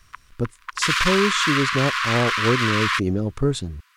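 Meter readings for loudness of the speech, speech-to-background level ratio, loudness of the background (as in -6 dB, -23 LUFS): -24.0 LUFS, -2.5 dB, -21.5 LUFS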